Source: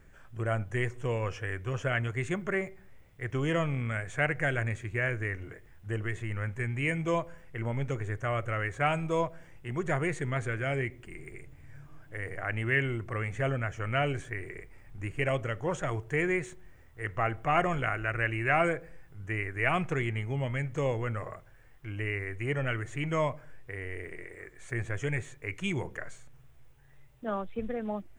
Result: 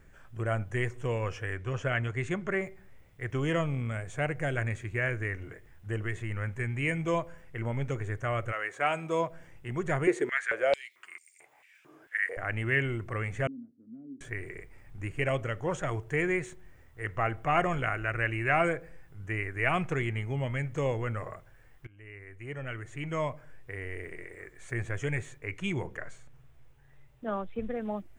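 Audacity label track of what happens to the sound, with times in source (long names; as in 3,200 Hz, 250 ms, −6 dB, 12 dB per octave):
1.540000	2.610000	Bessel low-pass filter 7,900 Hz
3.610000	4.570000	parametric band 1,800 Hz −7 dB 1.1 octaves
8.510000	9.290000	high-pass filter 590 Hz → 140 Hz
10.070000	12.370000	high-pass on a step sequencer 4.5 Hz 360–5,700 Hz
13.470000	14.210000	flat-topped band-pass 250 Hz, Q 4.4
21.870000	23.770000	fade in, from −23.5 dB
25.380000	27.750000	high-shelf EQ 5,200 Hz −5.5 dB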